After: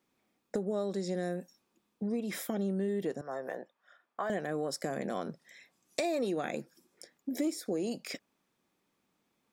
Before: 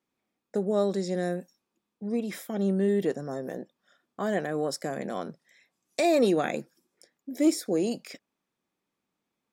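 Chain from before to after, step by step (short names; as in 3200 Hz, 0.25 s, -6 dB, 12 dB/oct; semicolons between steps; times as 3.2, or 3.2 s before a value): 3.21–4.3 three-band isolator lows -18 dB, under 580 Hz, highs -13 dB, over 2500 Hz; compressor 4:1, threshold -38 dBFS, peak gain reduction 17 dB; gain +5.5 dB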